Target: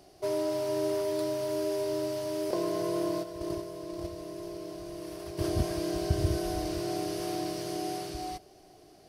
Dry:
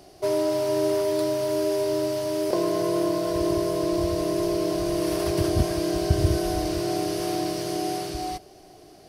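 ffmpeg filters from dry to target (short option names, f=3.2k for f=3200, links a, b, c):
-filter_complex "[0:a]asplit=3[a][b][c];[a]afade=t=out:st=3.22:d=0.02[d];[b]agate=range=-9dB:threshold=-22dB:ratio=16:detection=peak,afade=t=in:st=3.22:d=0.02,afade=t=out:st=5.42:d=0.02[e];[c]afade=t=in:st=5.42:d=0.02[f];[d][e][f]amix=inputs=3:normalize=0,volume=-6.5dB"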